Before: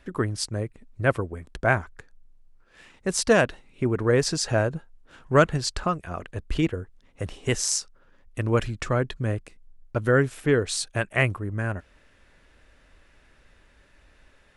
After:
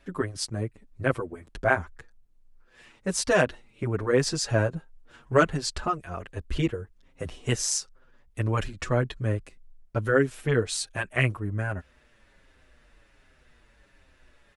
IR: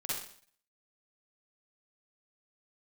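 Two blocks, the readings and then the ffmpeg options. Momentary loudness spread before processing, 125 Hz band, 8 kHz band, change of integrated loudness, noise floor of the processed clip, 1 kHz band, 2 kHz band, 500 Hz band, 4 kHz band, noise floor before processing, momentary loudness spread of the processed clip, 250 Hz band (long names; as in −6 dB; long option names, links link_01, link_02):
14 LU, −2.0 dB, −2.0 dB, −2.0 dB, −62 dBFS, −1.5 dB, −1.5 dB, −2.5 dB, −2.0 dB, −59 dBFS, 14 LU, −3.0 dB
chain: -filter_complex "[0:a]asplit=2[link_01][link_02];[link_02]adelay=6.9,afreqshift=-1.3[link_03];[link_01][link_03]amix=inputs=2:normalize=1,volume=1dB"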